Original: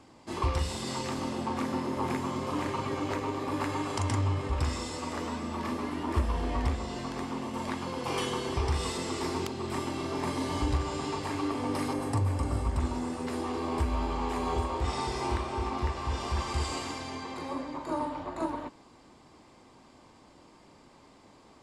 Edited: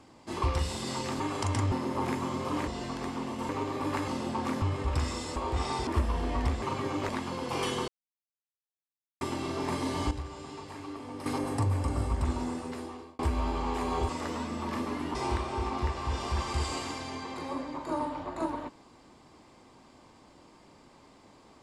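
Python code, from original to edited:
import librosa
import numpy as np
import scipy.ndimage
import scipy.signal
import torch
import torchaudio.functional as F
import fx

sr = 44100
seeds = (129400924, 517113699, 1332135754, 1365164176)

y = fx.edit(x, sr, fx.swap(start_s=1.2, length_s=0.54, other_s=3.75, other_length_s=0.52),
    fx.swap(start_s=2.69, length_s=0.47, other_s=6.82, other_length_s=0.82),
    fx.swap(start_s=5.01, length_s=1.06, other_s=14.64, other_length_s=0.51),
    fx.silence(start_s=8.43, length_s=1.33),
    fx.clip_gain(start_s=10.66, length_s=1.15, db=-9.5),
    fx.fade_out_span(start_s=13.01, length_s=0.73), tone=tone)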